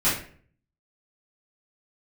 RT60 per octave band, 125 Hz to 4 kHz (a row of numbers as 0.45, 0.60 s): 0.75, 0.60, 0.55, 0.45, 0.45, 0.35 s